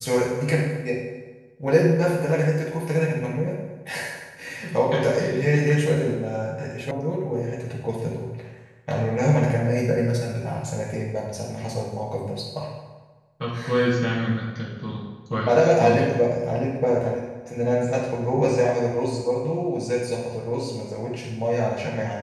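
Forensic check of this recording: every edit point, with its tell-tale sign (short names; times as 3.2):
6.91 sound cut off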